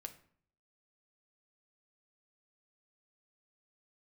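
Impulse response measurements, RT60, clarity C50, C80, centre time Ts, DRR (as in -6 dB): 0.55 s, 13.5 dB, 17.5 dB, 7 ms, 5.0 dB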